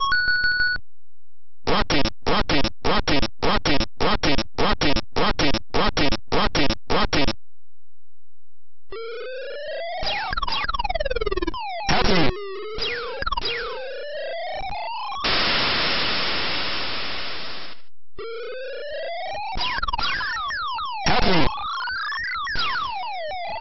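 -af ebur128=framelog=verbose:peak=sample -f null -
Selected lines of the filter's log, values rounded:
Integrated loudness:
  I:         -23.6 LUFS
  Threshold: -33.9 LUFS
Loudness range:
  LRA:         6.4 LU
  Threshold: -44.3 LUFS
  LRA low:   -28.5 LUFS
  LRA high:  -22.1 LUFS
Sample peak:
  Peak:       -8.5 dBFS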